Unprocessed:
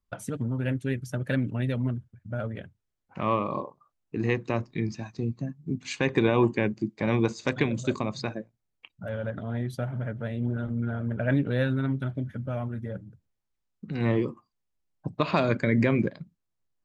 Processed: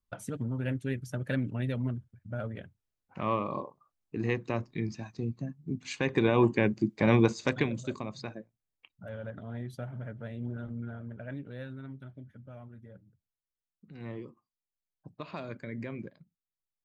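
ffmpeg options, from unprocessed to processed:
ffmpeg -i in.wav -af "volume=2.5dB,afade=type=in:start_time=6.09:duration=1.01:silence=0.473151,afade=type=out:start_time=7.1:duration=0.76:silence=0.298538,afade=type=out:start_time=10.69:duration=0.63:silence=0.398107" out.wav

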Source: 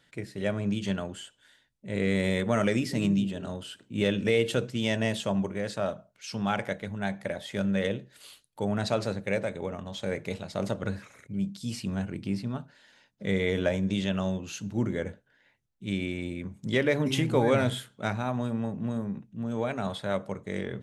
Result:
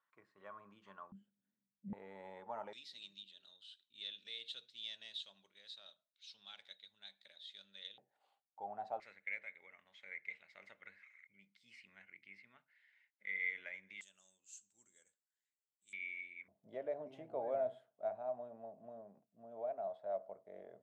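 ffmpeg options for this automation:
ffmpeg -i in.wav -af "asetnsamples=nb_out_samples=441:pad=0,asendcmd='1.12 bandpass f 200;1.93 bandpass f 860;2.73 bandpass f 3800;7.98 bandpass f 780;9 bandpass f 2100;14.01 bandpass f 7600;15.93 bandpass f 2200;16.48 bandpass f 660',bandpass=frequency=1100:width_type=q:width=13:csg=0" out.wav

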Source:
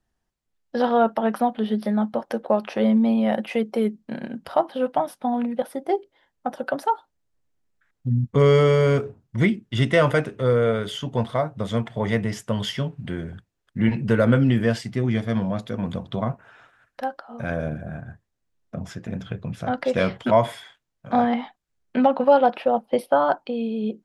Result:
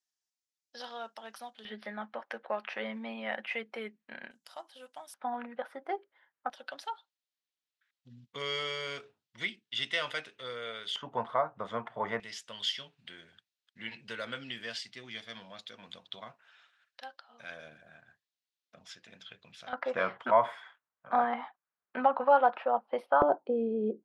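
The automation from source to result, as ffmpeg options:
ffmpeg -i in.wav -af "asetnsamples=nb_out_samples=441:pad=0,asendcmd='1.65 bandpass f 2000;4.31 bandpass f 7100;5.14 bandpass f 1500;6.5 bandpass f 3700;10.96 bandpass f 1100;12.2 bandpass f 3900;19.73 bandpass f 1200;23.22 bandpass f 430',bandpass=frequency=5800:width_type=q:width=1.7:csg=0" out.wav

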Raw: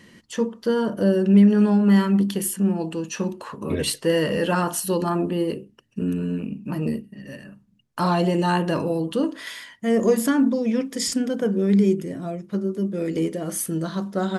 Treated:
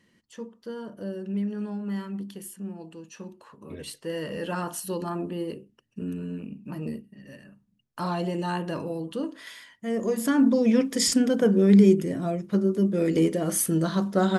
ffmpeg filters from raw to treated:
ffmpeg -i in.wav -af "volume=2dB,afade=type=in:start_time=3.83:duration=0.83:silence=0.446684,afade=type=in:start_time=10.14:duration=0.47:silence=0.316228" out.wav

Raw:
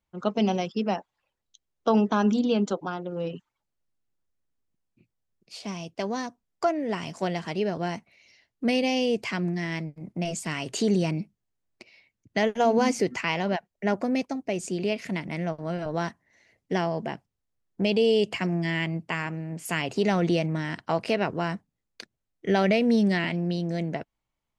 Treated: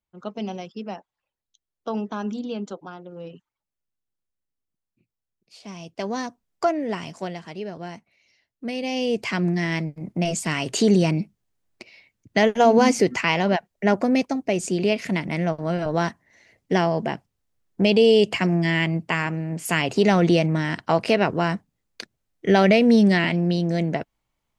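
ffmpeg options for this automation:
ffmpeg -i in.wav -af "volume=14.5dB,afade=type=in:start_time=5.59:duration=0.62:silence=0.334965,afade=type=out:start_time=6.76:duration=0.65:silence=0.375837,afade=type=in:start_time=8.75:duration=0.76:silence=0.266073" out.wav

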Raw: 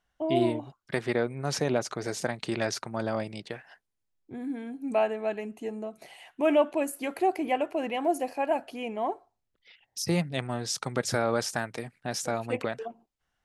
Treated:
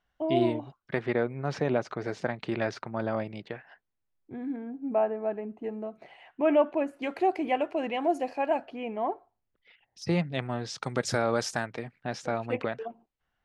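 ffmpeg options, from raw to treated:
ffmpeg -i in.wav -af "asetnsamples=nb_out_samples=441:pad=0,asendcmd='0.79 lowpass f 2700;4.56 lowpass f 1200;5.64 lowpass f 2200;7.02 lowpass f 5000;8.66 lowpass f 2400;10.02 lowpass f 3800;10.83 lowpass f 7800;11.66 lowpass f 3400',lowpass=4500" out.wav

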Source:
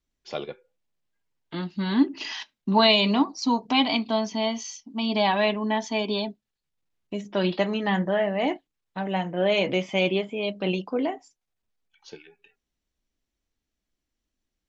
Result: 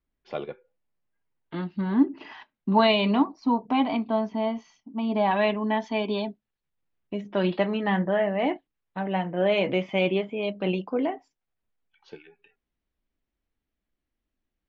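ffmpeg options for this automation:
ffmpeg -i in.wav -af "asetnsamples=nb_out_samples=441:pad=0,asendcmd='1.81 lowpass f 1300;2.54 lowpass f 2300;3.26 lowpass f 1500;5.31 lowpass f 2700',lowpass=2300" out.wav

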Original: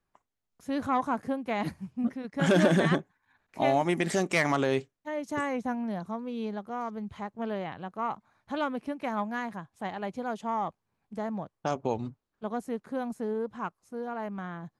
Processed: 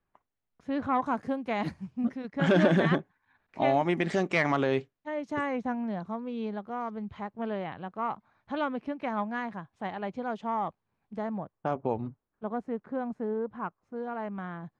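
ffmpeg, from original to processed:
ffmpeg -i in.wav -af "asetnsamples=nb_out_samples=441:pad=0,asendcmd='1.06 lowpass f 6300;2.28 lowpass f 3700;11.37 lowpass f 1900;13.96 lowpass f 3300',lowpass=2900" out.wav

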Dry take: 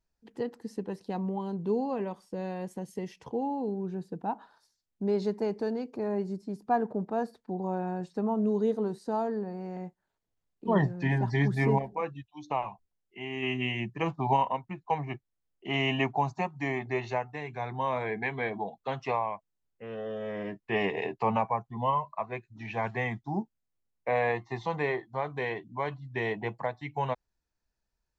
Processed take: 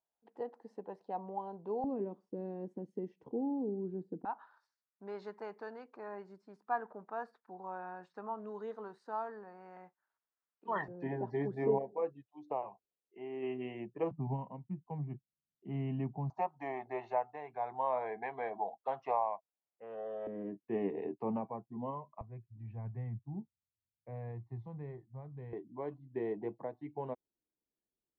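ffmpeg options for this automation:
ffmpeg -i in.wav -af "asetnsamples=nb_out_samples=441:pad=0,asendcmd='1.84 bandpass f 310;4.25 bandpass f 1300;10.88 bandpass f 470;14.11 bandpass f 170;16.3 bandpass f 730;20.27 bandpass f 290;22.21 bandpass f 100;25.53 bandpass f 330',bandpass=frequency=750:width_type=q:width=2:csg=0" out.wav

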